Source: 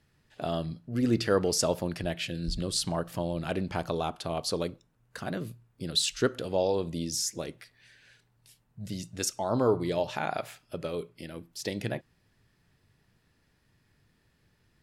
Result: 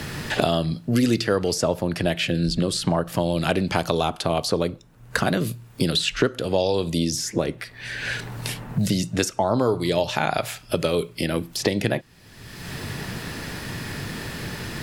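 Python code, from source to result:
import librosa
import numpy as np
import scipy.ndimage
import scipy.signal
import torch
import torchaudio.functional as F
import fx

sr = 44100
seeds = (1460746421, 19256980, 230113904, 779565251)

y = fx.band_squash(x, sr, depth_pct=100)
y = F.gain(torch.from_numpy(y), 8.0).numpy()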